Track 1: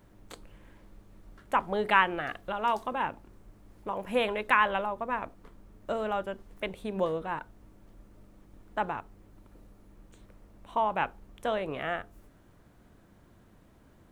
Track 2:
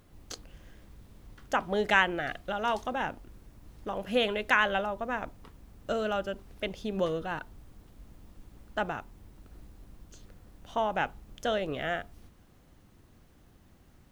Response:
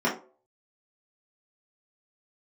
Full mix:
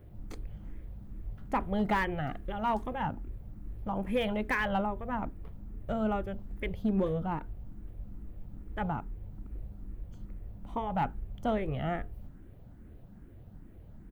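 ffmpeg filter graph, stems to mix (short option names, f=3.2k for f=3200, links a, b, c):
-filter_complex "[0:a]equalizer=f=1.1k:t=o:w=0.34:g=-13.5,asplit=2[a][b];[b]afreqshift=2.4[c];[a][c]amix=inputs=2:normalize=1,volume=1.5dB[d];[1:a]adelay=0.8,volume=-5.5dB[e];[d][e]amix=inputs=2:normalize=0,lowshelf=f=220:g=11.5,asoftclip=type=hard:threshold=-21.5dB,equalizer=f=5.9k:t=o:w=2:g=-13"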